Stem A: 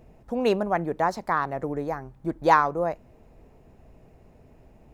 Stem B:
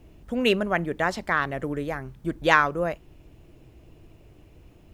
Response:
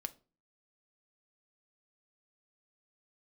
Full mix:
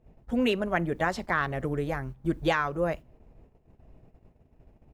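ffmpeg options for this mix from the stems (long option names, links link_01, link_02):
-filter_complex "[0:a]aemphasis=mode=reproduction:type=50fm,acompressor=threshold=-37dB:ratio=2,volume=-5.5dB,asplit=2[link_01][link_02];[1:a]alimiter=limit=-12.5dB:level=0:latency=1:release=368,volume=-1,adelay=10,volume=-3dB,asplit=2[link_03][link_04];[link_04]volume=-14.5dB[link_05];[link_02]apad=whole_len=218076[link_06];[link_03][link_06]sidechaingate=range=-33dB:threshold=-50dB:ratio=16:detection=peak[link_07];[2:a]atrim=start_sample=2205[link_08];[link_05][link_08]afir=irnorm=-1:irlink=0[link_09];[link_01][link_07][link_09]amix=inputs=3:normalize=0,lowshelf=frequency=200:gain=4.5,agate=range=-10dB:threshold=-53dB:ratio=16:detection=peak"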